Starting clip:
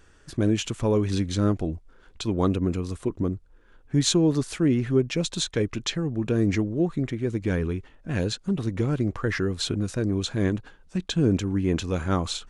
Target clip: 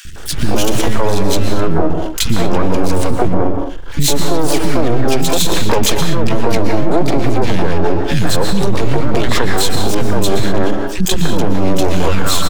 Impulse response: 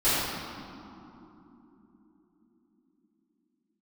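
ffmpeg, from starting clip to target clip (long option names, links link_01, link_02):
-filter_complex "[0:a]acompressor=threshold=-27dB:ratio=10,aeval=exprs='max(val(0),0)':channel_layout=same,asplit=2[link_01][link_02];[link_02]asetrate=88200,aresample=44100,atempo=0.5,volume=-8dB[link_03];[link_01][link_03]amix=inputs=2:normalize=0,acrossover=split=260|1800[link_04][link_05][link_06];[link_04]adelay=50[link_07];[link_05]adelay=160[link_08];[link_07][link_08][link_06]amix=inputs=3:normalize=0,asplit=2[link_09][link_10];[1:a]atrim=start_sample=2205,afade=type=out:start_time=0.19:duration=0.01,atrim=end_sample=8820,adelay=114[link_11];[link_10][link_11]afir=irnorm=-1:irlink=0,volume=-21.5dB[link_12];[link_09][link_12]amix=inputs=2:normalize=0,alimiter=level_in=28dB:limit=-1dB:release=50:level=0:latency=1,volume=-1.5dB"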